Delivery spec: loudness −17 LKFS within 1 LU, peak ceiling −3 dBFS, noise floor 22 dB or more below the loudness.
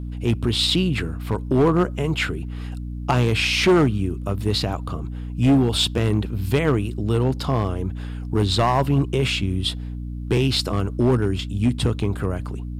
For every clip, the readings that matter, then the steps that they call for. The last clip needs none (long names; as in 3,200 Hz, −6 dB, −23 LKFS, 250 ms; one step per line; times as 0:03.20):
share of clipped samples 1.2%; peaks flattened at −11.5 dBFS; mains hum 60 Hz; hum harmonics up to 300 Hz; level of the hum −28 dBFS; integrated loudness −21.5 LKFS; sample peak −11.5 dBFS; target loudness −17.0 LKFS
→ clipped peaks rebuilt −11.5 dBFS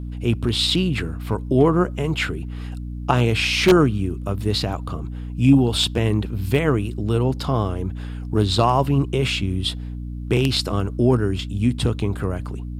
share of clipped samples 0.0%; mains hum 60 Hz; hum harmonics up to 300 Hz; level of the hum −28 dBFS
→ hum removal 60 Hz, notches 5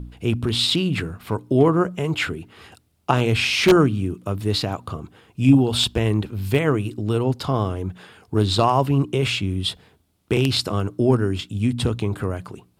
mains hum none found; integrated loudness −21.0 LKFS; sample peak −2.5 dBFS; target loudness −17.0 LKFS
→ level +4 dB
brickwall limiter −3 dBFS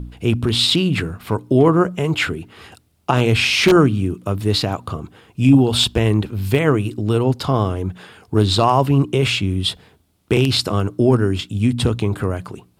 integrated loudness −17.5 LKFS; sample peak −3.0 dBFS; background noise floor −59 dBFS